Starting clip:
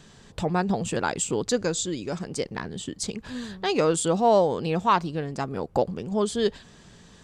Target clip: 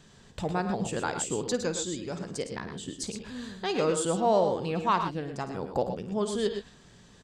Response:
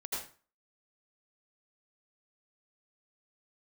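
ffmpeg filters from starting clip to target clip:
-af "aecho=1:1:53|107|122:0.211|0.316|0.299,volume=-5dB"

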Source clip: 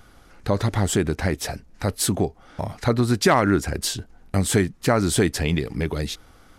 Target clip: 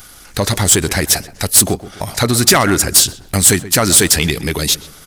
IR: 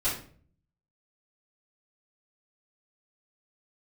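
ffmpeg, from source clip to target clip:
-filter_complex "[0:a]crystalizer=i=7:c=0,acontrast=82,atempo=1.3,asplit=2[link_01][link_02];[link_02]adelay=127,lowpass=frequency=1800:poles=1,volume=-15dB,asplit=2[link_03][link_04];[link_04]adelay=127,lowpass=frequency=1800:poles=1,volume=0.44,asplit=2[link_05][link_06];[link_06]adelay=127,lowpass=frequency=1800:poles=1,volume=0.44,asplit=2[link_07][link_08];[link_08]adelay=127,lowpass=frequency=1800:poles=1,volume=0.44[link_09];[link_03][link_05][link_07][link_09]amix=inputs=4:normalize=0[link_10];[link_01][link_10]amix=inputs=2:normalize=0,volume=-2dB"

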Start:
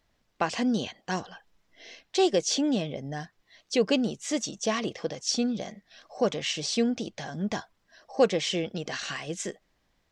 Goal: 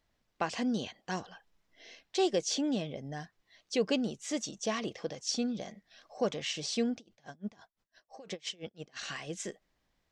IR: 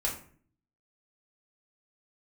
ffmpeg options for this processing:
-filter_complex "[0:a]asettb=1/sr,asplit=3[link_01][link_02][link_03];[link_01]atrim=end=6.964[link_04];[link_02]atrim=start=6.96:end=8.97,asetpts=PTS-STARTPTS,afade=type=in:duration=0.004:curve=qsin,afade=type=out:start_time=2.006:duration=0.004:curve=qsin,aeval=exprs='val(0)*pow(10,-29*(0.5-0.5*cos(2*PI*5.9*n/s))/20)':channel_layout=same[link_05];[link_03]atrim=start=8.966[link_06];[link_04][link_05]acrossfade=duration=0.004:curve1=hsin:curve2=qsin[link_07];[link_07][link_06]acrossfade=duration=0.004:curve1=qsin:curve2=hsin,volume=-5.5dB"

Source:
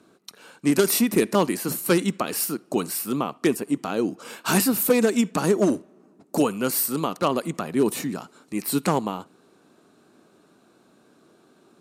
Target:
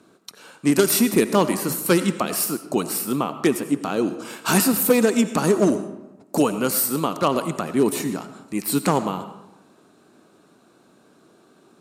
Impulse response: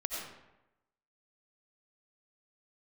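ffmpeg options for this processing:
-filter_complex "[0:a]asplit=2[link_01][link_02];[link_02]equalizer=frequency=125:width_type=o:width=1:gain=4,equalizer=frequency=1000:width_type=o:width=1:gain=4,equalizer=frequency=8000:width_type=o:width=1:gain=5[link_03];[1:a]atrim=start_sample=2205[link_04];[link_03][link_04]afir=irnorm=-1:irlink=0,volume=-11.5dB[link_05];[link_01][link_05]amix=inputs=2:normalize=0"

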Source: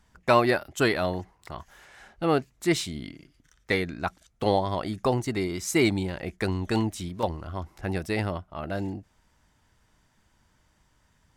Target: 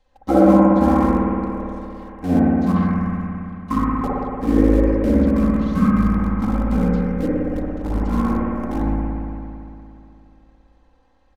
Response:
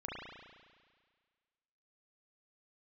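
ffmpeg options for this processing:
-filter_complex "[0:a]acrossover=split=2600[link_01][link_02];[link_02]acompressor=threshold=-49dB:ratio=4:attack=1:release=60[link_03];[link_01][link_03]amix=inputs=2:normalize=0,asetrate=24046,aresample=44100,atempo=1.83401,aecho=1:1:3.8:0.98,asplit=2[link_04][link_05];[link_05]acrusher=bits=5:dc=4:mix=0:aa=0.000001,volume=-8dB[link_06];[link_04][link_06]amix=inputs=2:normalize=0[link_07];[1:a]atrim=start_sample=2205,asetrate=26901,aresample=44100[link_08];[link_07][link_08]afir=irnorm=-1:irlink=0,volume=-1.5dB"

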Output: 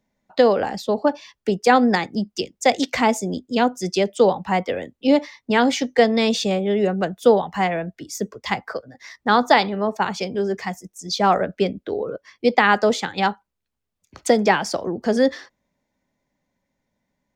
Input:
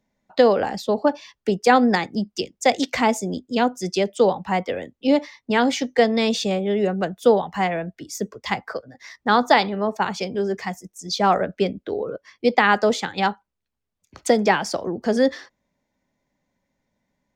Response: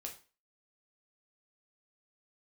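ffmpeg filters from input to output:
-af "dynaudnorm=framelen=220:gausssize=17:maxgain=3dB"

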